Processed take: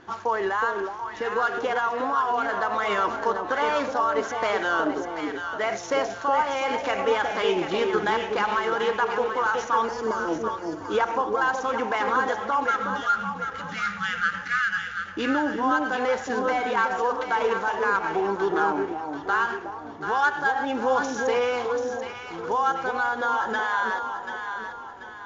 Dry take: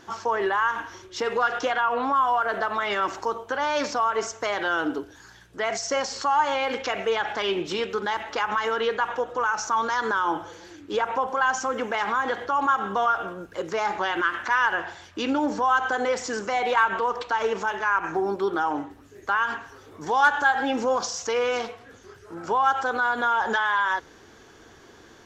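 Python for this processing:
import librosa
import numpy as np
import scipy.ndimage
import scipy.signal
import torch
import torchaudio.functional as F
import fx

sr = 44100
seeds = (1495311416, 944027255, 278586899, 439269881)

p1 = scipy.ndimage.median_filter(x, 9, mode='constant')
p2 = fx.spec_erase(p1, sr, start_s=12.64, length_s=2.41, low_hz=230.0, high_hz=1200.0)
p3 = scipy.signal.sosfilt(scipy.signal.cheby1(8, 1.0, 7100.0, 'lowpass', fs=sr, output='sos'), p2)
p4 = fx.spec_box(p3, sr, start_s=9.85, length_s=0.96, low_hz=690.0, high_hz=4400.0, gain_db=-16)
p5 = fx.rider(p4, sr, range_db=4, speed_s=0.5)
y = p5 + fx.echo_alternate(p5, sr, ms=368, hz=820.0, feedback_pct=63, wet_db=-3.0, dry=0)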